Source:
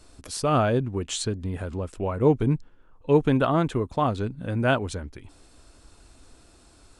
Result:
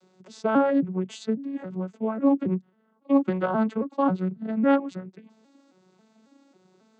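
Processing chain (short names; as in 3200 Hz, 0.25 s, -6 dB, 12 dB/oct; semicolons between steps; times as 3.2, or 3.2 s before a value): arpeggiated vocoder minor triad, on F#3, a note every 0.272 s; dynamic EQ 1300 Hz, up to +3 dB, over -40 dBFS, Q 0.76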